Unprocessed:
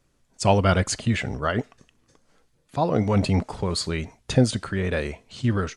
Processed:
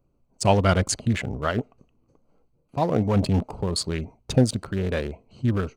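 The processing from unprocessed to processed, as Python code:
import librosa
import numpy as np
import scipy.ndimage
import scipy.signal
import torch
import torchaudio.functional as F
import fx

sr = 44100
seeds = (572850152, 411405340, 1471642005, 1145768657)

y = fx.wiener(x, sr, points=25)
y = fx.high_shelf(y, sr, hz=8300.0, db=9.5)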